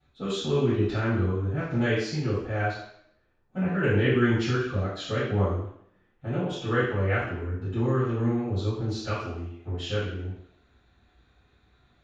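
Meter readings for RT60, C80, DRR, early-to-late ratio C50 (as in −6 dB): 0.70 s, 4.0 dB, −16.0 dB, 0.0 dB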